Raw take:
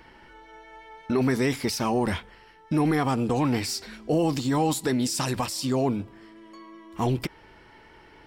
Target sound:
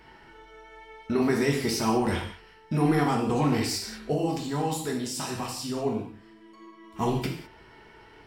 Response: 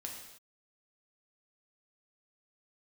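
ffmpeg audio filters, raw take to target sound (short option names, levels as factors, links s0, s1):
-filter_complex "[0:a]asettb=1/sr,asplit=3[s0][s1][s2];[s0]atrim=end=4.134[s3];[s1]atrim=start=4.13:end=6.84,asetpts=PTS-STARTPTS,afade=t=in:d=0.004:c=qsin,afade=t=out:st=2.706:d=0.004:c=qsin,flanger=delay=7.6:depth=2.2:regen=82:speed=1.5:shape=sinusoidal[s4];[s2]atrim=start=6.836[s5];[s3][s4]acrossfade=d=0.004:c1=hsin:c2=qsin[s6];[s6][s5]acrossfade=d=0.004:c1=qsin:c2=hsin[s7];[1:a]atrim=start_sample=2205,asetrate=66150,aresample=44100[s8];[s7][s8]afir=irnorm=-1:irlink=0,volume=1.88"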